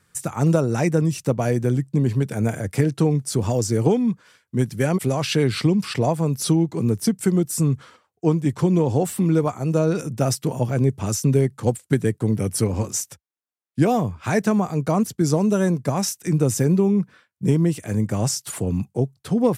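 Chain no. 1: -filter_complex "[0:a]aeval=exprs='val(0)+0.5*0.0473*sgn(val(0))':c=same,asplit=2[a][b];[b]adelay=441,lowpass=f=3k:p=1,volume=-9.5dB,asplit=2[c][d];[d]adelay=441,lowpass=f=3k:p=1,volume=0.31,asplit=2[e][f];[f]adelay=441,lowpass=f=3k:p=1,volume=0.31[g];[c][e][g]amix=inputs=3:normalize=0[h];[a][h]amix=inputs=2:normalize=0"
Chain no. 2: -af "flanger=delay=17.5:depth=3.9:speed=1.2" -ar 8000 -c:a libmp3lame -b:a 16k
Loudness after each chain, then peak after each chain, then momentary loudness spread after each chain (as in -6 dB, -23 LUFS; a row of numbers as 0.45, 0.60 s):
-20.0, -25.0 LUFS; -5.0, -8.5 dBFS; 4, 6 LU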